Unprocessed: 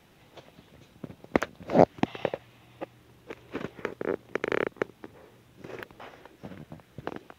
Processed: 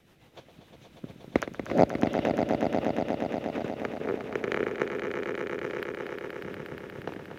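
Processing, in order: rotary speaker horn 7 Hz; swelling echo 0.119 s, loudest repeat 5, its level -8 dB

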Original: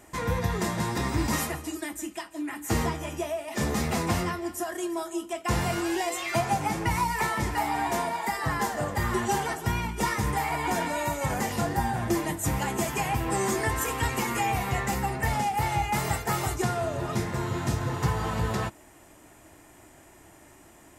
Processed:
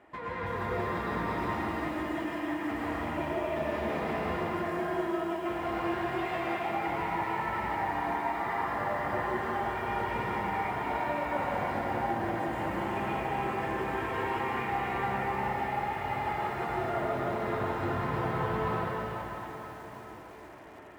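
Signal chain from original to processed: HPF 83 Hz 12 dB/oct; bell 120 Hz -11.5 dB 2.5 oct; compressor 16:1, threshold -34 dBFS, peak gain reduction 12 dB; air absorption 470 m; plate-style reverb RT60 4.7 s, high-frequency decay 0.85×, pre-delay 85 ms, DRR -8 dB; lo-fi delay 0.328 s, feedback 55%, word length 8-bit, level -12.5 dB

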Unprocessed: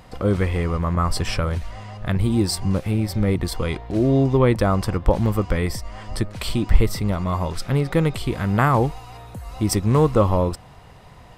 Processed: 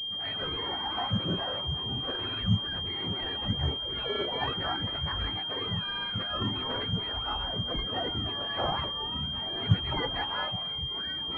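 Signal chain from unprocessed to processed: spectrum mirrored in octaves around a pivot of 960 Hz; echoes that change speed 85 ms, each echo -6 st, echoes 3, each echo -6 dB; pulse-width modulation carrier 3200 Hz; gain -8 dB

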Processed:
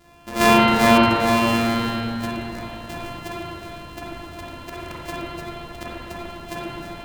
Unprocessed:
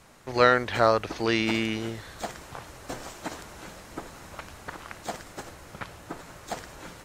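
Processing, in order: sample sorter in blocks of 128 samples; spring tank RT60 2.8 s, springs 36/43/47 ms, chirp 65 ms, DRR -8.5 dB

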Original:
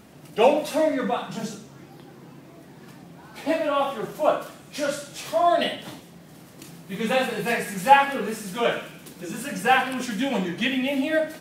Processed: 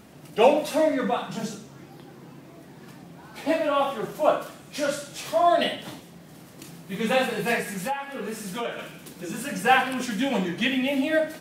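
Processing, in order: 7.6–8.79 compressor 5:1, threshold -28 dBFS, peak gain reduction 17.5 dB

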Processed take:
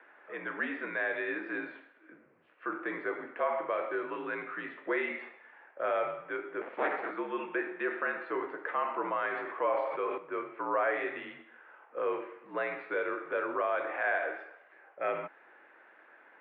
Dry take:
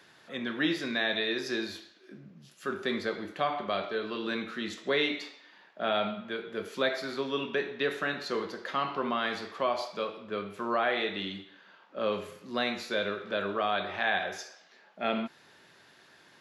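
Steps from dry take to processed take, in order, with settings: 6.61–7.11 cycle switcher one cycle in 3, inverted; in parallel at +2.5 dB: limiter -25.5 dBFS, peak gain reduction 10 dB; on the sum: mistuned SSB -58 Hz 430–2300 Hz; 9.3–10.18 sustainer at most 37 dB/s; gain -5 dB

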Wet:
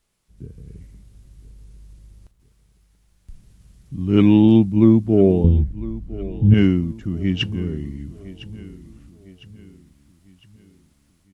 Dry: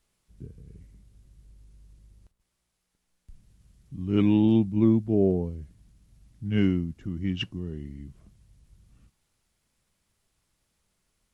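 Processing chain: 5.44–6.54 tilt -4 dB/oct; AGC gain up to 6.5 dB; feedback echo 1.006 s, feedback 45%, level -17.5 dB; gain +2 dB

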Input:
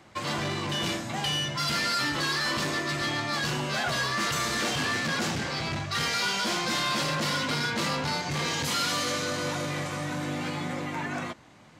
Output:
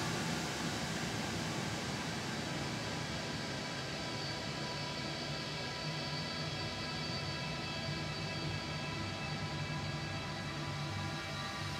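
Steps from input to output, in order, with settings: spectral repair 5.45–5.69, 500–2500 Hz after; Paulstretch 22×, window 0.50 s, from 5.31; gain -8 dB

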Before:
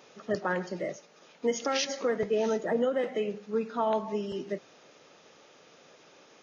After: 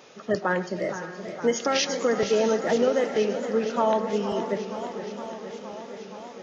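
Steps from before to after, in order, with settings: diffused feedback echo 0.533 s, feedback 41%, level -12 dB; warbling echo 0.468 s, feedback 77%, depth 142 cents, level -12 dB; gain +5 dB

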